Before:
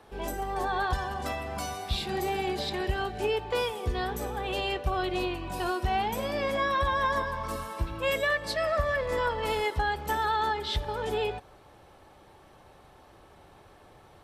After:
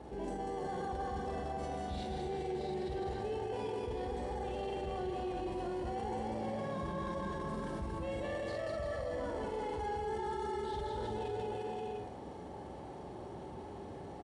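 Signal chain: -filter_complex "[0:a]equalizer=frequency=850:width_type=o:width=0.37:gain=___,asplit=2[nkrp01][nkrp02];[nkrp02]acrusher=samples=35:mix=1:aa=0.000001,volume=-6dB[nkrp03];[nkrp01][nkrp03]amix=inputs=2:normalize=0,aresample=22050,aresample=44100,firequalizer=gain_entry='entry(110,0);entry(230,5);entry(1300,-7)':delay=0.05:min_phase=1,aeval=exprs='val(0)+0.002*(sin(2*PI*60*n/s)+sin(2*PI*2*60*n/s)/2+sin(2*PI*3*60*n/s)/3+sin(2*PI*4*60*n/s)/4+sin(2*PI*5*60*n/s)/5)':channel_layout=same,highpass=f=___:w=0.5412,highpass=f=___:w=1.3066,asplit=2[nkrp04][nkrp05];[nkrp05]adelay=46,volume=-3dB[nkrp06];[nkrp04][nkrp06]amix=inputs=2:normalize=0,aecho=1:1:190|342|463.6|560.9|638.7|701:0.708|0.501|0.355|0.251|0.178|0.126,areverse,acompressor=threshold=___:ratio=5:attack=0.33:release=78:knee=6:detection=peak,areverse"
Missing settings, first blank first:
7, 51, 51, -36dB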